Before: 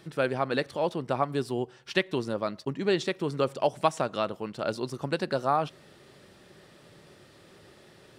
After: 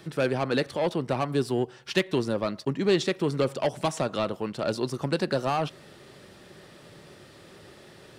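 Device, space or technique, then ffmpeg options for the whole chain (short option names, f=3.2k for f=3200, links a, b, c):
one-band saturation: -filter_complex "[0:a]acrossover=split=390|3300[a][b][c];[b]asoftclip=type=tanh:threshold=-28dB[d];[a][d][c]amix=inputs=3:normalize=0,volume=4.5dB"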